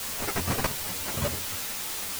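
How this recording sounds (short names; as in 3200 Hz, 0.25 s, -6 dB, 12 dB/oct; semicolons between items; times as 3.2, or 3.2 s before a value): aliases and images of a low sample rate 3500 Hz, jitter 0%; chopped level 2 Hz, depth 65%, duty 30%; a quantiser's noise floor 6-bit, dither triangular; a shimmering, thickened sound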